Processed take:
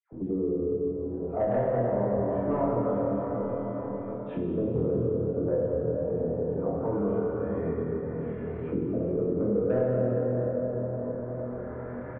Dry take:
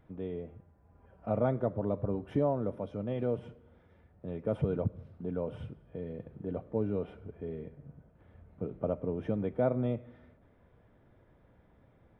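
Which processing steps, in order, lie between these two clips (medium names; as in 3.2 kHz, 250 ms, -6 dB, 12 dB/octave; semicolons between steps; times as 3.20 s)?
tracing distortion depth 0.066 ms; hum notches 50/100/150/200 Hz; in parallel at 0 dB: compression, threshold -39 dBFS, peak gain reduction 15 dB; 3.00–4.25 s: on the sum: feedback comb 100 Hz, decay 0.92 s, harmonics all, mix 100%; phase dispersion lows, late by 122 ms, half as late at 1.3 kHz; LFO low-pass saw up 0.23 Hz 310–3000 Hz; saturation -15.5 dBFS, distortion -19 dB; doubling 25 ms -3 dB; on a send: two-band feedback delay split 450 Hz, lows 469 ms, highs 202 ms, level -14.5 dB; on the sum: plate-style reverb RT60 3.7 s, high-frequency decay 0.5×, DRR -4.5 dB; three bands compressed up and down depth 70%; trim -6 dB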